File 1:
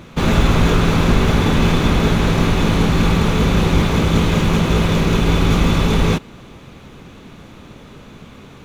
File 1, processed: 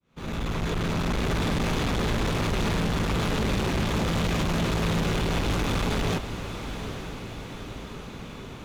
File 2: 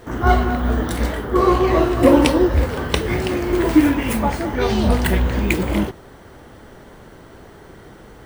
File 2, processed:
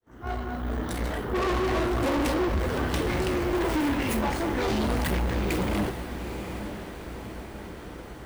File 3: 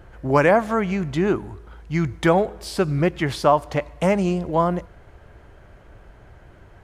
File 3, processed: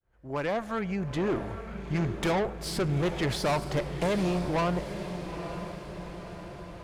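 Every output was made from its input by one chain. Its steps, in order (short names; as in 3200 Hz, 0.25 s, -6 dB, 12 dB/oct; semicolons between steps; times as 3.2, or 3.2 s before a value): opening faded in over 1.56 s; tube stage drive 24 dB, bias 0.5; on a send: diffused feedback echo 0.866 s, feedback 56%, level -9.5 dB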